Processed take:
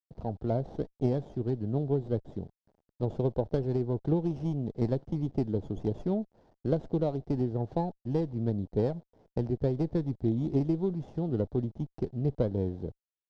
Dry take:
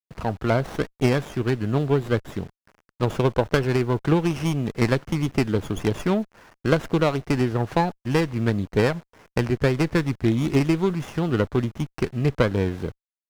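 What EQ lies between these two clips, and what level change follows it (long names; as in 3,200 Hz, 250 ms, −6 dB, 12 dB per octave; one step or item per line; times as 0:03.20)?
high-frequency loss of the air 120 metres
flat-topped bell 1,700 Hz −15 dB
high-shelf EQ 2,200 Hz −11 dB
−7.0 dB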